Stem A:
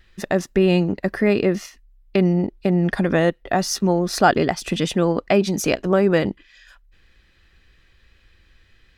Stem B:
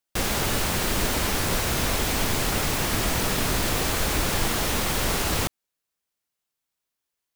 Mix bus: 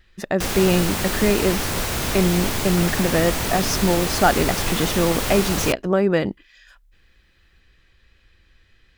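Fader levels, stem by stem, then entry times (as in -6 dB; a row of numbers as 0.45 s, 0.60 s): -1.5 dB, +0.5 dB; 0.00 s, 0.25 s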